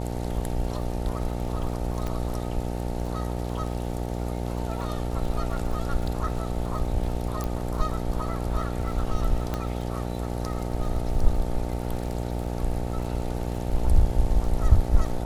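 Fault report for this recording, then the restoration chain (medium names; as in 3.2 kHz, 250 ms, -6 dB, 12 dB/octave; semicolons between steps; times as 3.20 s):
buzz 60 Hz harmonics 15 -30 dBFS
crackle 34 per s -34 dBFS
2.07 s: pop -18 dBFS
7.44 s: pop -17 dBFS
9.54 s: pop -15 dBFS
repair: de-click; de-hum 60 Hz, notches 15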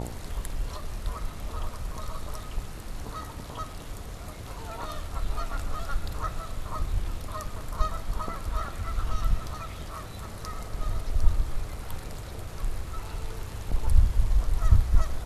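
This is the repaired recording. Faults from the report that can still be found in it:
2.07 s: pop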